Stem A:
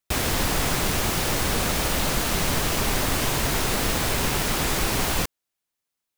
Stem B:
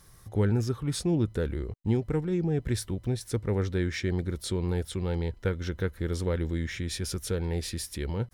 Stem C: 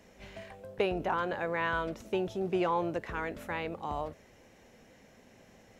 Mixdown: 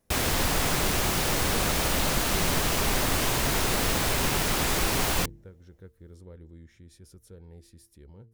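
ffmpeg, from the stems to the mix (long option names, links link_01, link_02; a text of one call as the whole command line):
ffmpeg -i stem1.wav -i stem2.wav -i stem3.wav -filter_complex "[0:a]bandreject=frequency=49.26:width_type=h:width=4,bandreject=frequency=98.52:width_type=h:width=4,bandreject=frequency=147.78:width_type=h:width=4,bandreject=frequency=197.04:width_type=h:width=4,bandreject=frequency=246.3:width_type=h:width=4,bandreject=frequency=295.56:width_type=h:width=4,volume=-1.5dB[link_01];[1:a]volume=-17.5dB[link_02];[2:a]volume=-13.5dB[link_03];[link_02][link_03]amix=inputs=2:normalize=0,equalizer=frequency=2700:width_type=o:width=2.7:gain=-9,alimiter=level_in=10.5dB:limit=-24dB:level=0:latency=1:release=449,volume=-10.5dB,volume=0dB[link_04];[link_01][link_04]amix=inputs=2:normalize=0,bandreject=frequency=113:width_type=h:width=4,bandreject=frequency=226:width_type=h:width=4,bandreject=frequency=339:width_type=h:width=4,bandreject=frequency=452:width_type=h:width=4" out.wav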